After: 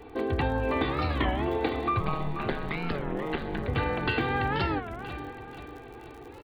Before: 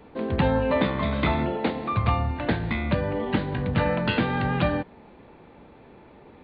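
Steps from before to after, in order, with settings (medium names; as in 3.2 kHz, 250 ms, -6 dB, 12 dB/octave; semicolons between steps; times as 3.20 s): comb 2.6 ms, depth 78%; compression 2.5:1, threshold -28 dBFS, peak gain reduction 9 dB; 2.00–3.68 s: ring modulator 75 Hz; crackle 53 per s -43 dBFS; feedback delay 485 ms, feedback 47%, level -11 dB; warped record 33 1/3 rpm, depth 250 cents; trim +1 dB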